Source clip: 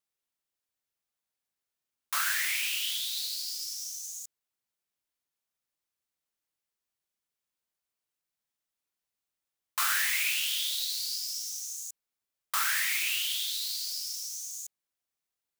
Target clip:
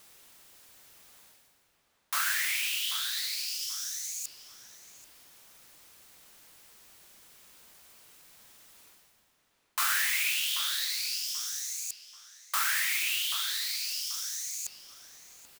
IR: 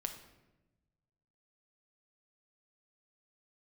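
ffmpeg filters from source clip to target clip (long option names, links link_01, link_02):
-filter_complex "[0:a]areverse,acompressor=mode=upward:threshold=-31dB:ratio=2.5,areverse,asplit=2[link_01][link_02];[link_02]adelay=785,lowpass=frequency=2600:poles=1,volume=-9.5dB,asplit=2[link_03][link_04];[link_04]adelay=785,lowpass=frequency=2600:poles=1,volume=0.31,asplit=2[link_05][link_06];[link_06]adelay=785,lowpass=frequency=2600:poles=1,volume=0.31[link_07];[link_01][link_03][link_05][link_07]amix=inputs=4:normalize=0"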